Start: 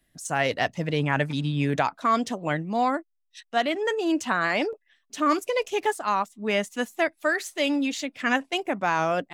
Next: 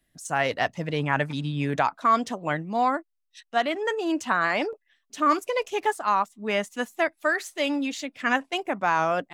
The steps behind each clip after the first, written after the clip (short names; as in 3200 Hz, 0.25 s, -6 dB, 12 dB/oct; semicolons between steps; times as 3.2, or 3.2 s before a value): dynamic EQ 1100 Hz, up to +5 dB, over -35 dBFS, Q 0.94; gain -2.5 dB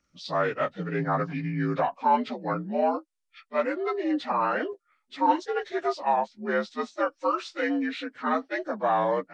inharmonic rescaling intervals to 83%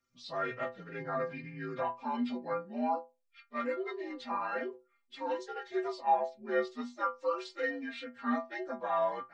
metallic resonator 120 Hz, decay 0.31 s, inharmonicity 0.008; gain +3 dB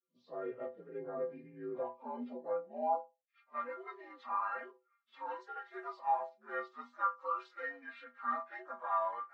block floating point 7-bit; band-pass sweep 420 Hz -> 1200 Hz, 1.85–4; gain +2 dB; Vorbis 32 kbps 32000 Hz